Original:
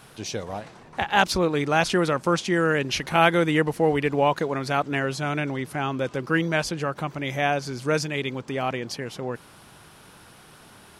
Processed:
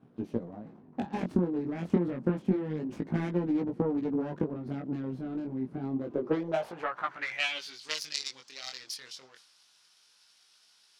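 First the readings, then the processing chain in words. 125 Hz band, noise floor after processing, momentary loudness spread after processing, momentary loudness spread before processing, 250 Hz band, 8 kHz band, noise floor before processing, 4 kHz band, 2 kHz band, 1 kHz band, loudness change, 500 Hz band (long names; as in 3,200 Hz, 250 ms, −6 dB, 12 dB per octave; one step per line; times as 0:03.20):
−7.5 dB, −64 dBFS, 11 LU, 12 LU, −4.0 dB, −10.5 dB, −50 dBFS, −8.0 dB, −14.0 dB, −15.5 dB, −8.5 dB, −10.5 dB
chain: phase distortion by the signal itself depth 0.56 ms
band-pass filter sweep 240 Hz → 5,100 Hz, 0:05.95–0:07.92
transient designer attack +12 dB, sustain +8 dB
chorus effect 0.28 Hz, delay 16.5 ms, depth 7 ms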